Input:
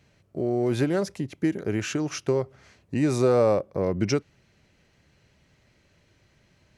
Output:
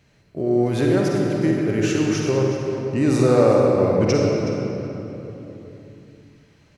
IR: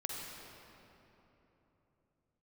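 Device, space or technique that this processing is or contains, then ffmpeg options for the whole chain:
cave: -filter_complex "[0:a]aecho=1:1:371:0.211[a];[1:a]atrim=start_sample=2205[b];[a][b]afir=irnorm=-1:irlink=0,volume=4.5dB"

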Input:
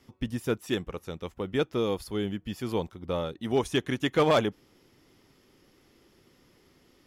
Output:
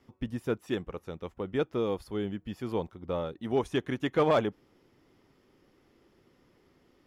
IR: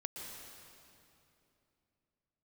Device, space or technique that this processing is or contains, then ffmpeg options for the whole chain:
through cloth: -af "lowshelf=f=350:g=-3.5,highshelf=f=2.6k:g=-12"

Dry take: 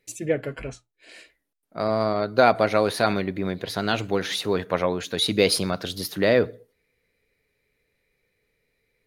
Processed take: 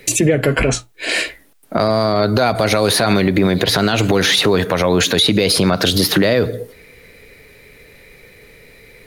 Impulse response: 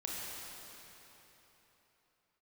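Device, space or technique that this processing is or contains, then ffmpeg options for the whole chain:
mastering chain: -filter_complex "[0:a]equalizer=f=5.5k:t=o:w=0.77:g=-1.5,acrossover=split=160|4100[a][b][c];[a]acompressor=threshold=-44dB:ratio=4[d];[b]acompressor=threshold=-33dB:ratio=4[e];[c]acompressor=threshold=-43dB:ratio=4[f];[d][e][f]amix=inputs=3:normalize=0,acompressor=threshold=-38dB:ratio=2,asoftclip=type=tanh:threshold=-20dB,alimiter=level_in=32.5dB:limit=-1dB:release=50:level=0:latency=1,volume=-4dB"

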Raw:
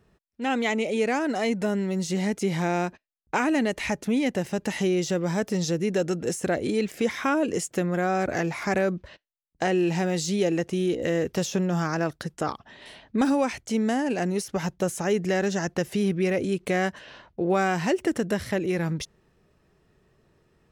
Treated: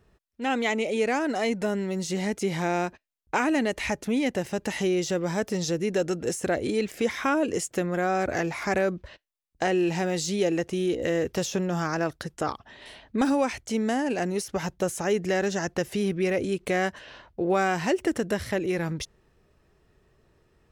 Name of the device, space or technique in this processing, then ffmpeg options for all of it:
low shelf boost with a cut just above: -af "lowshelf=f=110:g=5,equalizer=f=170:t=o:w=1.1:g=-5"

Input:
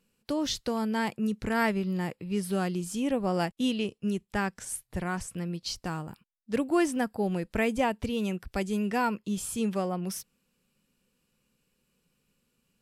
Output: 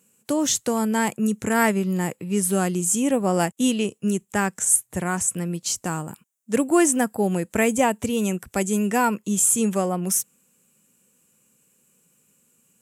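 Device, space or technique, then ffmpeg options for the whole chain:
budget condenser microphone: -af "highpass=120,highshelf=f=5.8k:t=q:w=3:g=7.5,volume=7dB"

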